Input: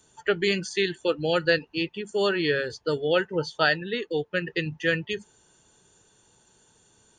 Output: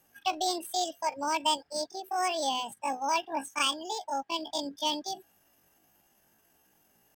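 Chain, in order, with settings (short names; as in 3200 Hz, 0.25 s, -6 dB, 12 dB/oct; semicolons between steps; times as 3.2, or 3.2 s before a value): pitch shift +10.5 st; gain -5.5 dB; IMA ADPCM 176 kbps 44100 Hz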